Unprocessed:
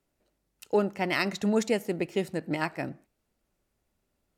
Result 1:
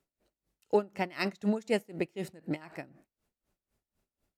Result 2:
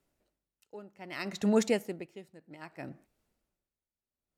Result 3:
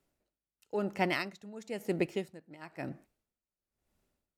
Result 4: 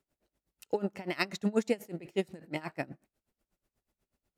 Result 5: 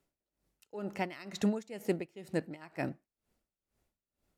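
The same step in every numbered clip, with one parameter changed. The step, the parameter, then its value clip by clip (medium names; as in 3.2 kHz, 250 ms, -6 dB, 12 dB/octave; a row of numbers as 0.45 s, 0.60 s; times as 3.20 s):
logarithmic tremolo, rate: 4 Hz, 0.63 Hz, 1 Hz, 8.2 Hz, 2.1 Hz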